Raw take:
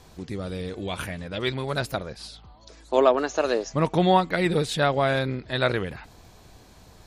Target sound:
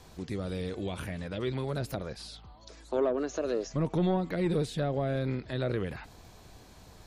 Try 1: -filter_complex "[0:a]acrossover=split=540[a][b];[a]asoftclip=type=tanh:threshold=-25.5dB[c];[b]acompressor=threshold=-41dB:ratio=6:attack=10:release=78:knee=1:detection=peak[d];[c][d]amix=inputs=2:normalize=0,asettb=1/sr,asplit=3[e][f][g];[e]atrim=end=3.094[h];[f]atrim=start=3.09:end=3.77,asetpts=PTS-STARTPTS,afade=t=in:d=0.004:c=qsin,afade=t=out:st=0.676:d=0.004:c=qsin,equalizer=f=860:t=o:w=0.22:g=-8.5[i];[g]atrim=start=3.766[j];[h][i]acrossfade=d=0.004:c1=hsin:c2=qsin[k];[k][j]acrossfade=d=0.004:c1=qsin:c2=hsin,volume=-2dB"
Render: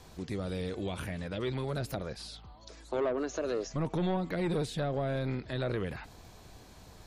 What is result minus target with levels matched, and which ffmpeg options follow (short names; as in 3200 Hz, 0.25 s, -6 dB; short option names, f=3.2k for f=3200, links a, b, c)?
soft clip: distortion +6 dB
-filter_complex "[0:a]acrossover=split=540[a][b];[a]asoftclip=type=tanh:threshold=-19dB[c];[b]acompressor=threshold=-41dB:ratio=6:attack=10:release=78:knee=1:detection=peak[d];[c][d]amix=inputs=2:normalize=0,asettb=1/sr,asplit=3[e][f][g];[e]atrim=end=3.094[h];[f]atrim=start=3.09:end=3.77,asetpts=PTS-STARTPTS,afade=t=in:d=0.004:c=qsin,afade=t=out:st=0.676:d=0.004:c=qsin,equalizer=f=860:t=o:w=0.22:g=-8.5[i];[g]atrim=start=3.766[j];[h][i]acrossfade=d=0.004:c1=hsin:c2=qsin[k];[k][j]acrossfade=d=0.004:c1=qsin:c2=hsin,volume=-2dB"